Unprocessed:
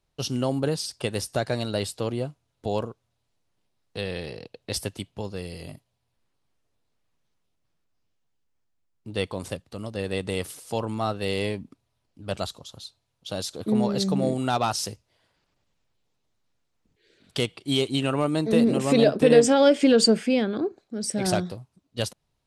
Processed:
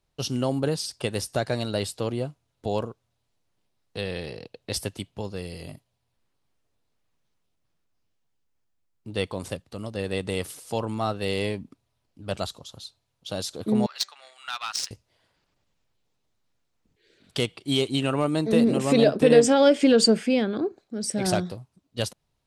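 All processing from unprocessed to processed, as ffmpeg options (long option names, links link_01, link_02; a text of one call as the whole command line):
ffmpeg -i in.wav -filter_complex "[0:a]asettb=1/sr,asplit=3[link_01][link_02][link_03];[link_01]atrim=end=13.864[link_04];[link_02]atrim=start=13.86:end=14.91,asetpts=PTS-STARTPTS,afade=type=in:duration=0.004:curve=qsin,afade=type=out:start_time=1.046:duration=0.004:curve=qsin,highpass=frequency=1300:width=0.5412,highpass=frequency=1300:width=1.3066,highshelf=frequency=4200:gain=9,adynamicsmooth=sensitivity=1.5:basefreq=2700[link_05];[link_03]atrim=start=14.906[link_06];[link_04][link_05]acrossfade=duration=0.004:curve1=hsin:curve2=qsin[link_07];[link_07][link_06]acrossfade=duration=0.004:curve1=qsin:curve2=hsin" out.wav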